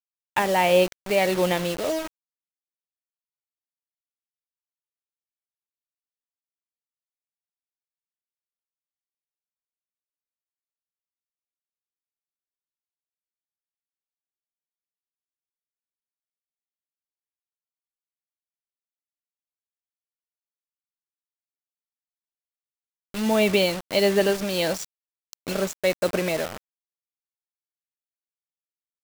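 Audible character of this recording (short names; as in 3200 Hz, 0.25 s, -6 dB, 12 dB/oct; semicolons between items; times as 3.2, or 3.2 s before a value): tremolo triangle 1.5 Hz, depth 60%; a quantiser's noise floor 6-bit, dither none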